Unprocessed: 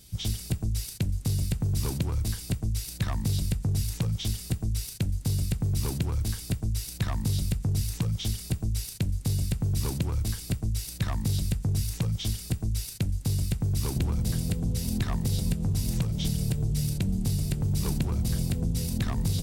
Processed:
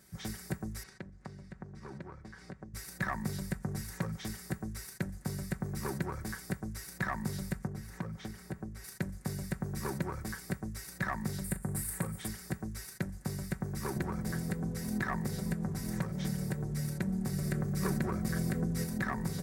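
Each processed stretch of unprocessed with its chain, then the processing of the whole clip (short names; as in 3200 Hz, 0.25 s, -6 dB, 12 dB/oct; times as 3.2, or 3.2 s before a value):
0.83–2.74 air absorption 120 m + compressor 3:1, threshold -38 dBFS
7.67–8.84 high shelf 3100 Hz -8.5 dB + compressor 2:1, threshold -29 dBFS
11.44–12.27 resonant high shelf 7200 Hz +7 dB, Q 3 + doubler 40 ms -13 dB
17.33–18.84 notch 880 Hz, Q 5.5 + fast leveller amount 70%
whole clip: HPF 330 Hz 6 dB/oct; resonant high shelf 2300 Hz -9 dB, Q 3; comb 5.3 ms, depth 48%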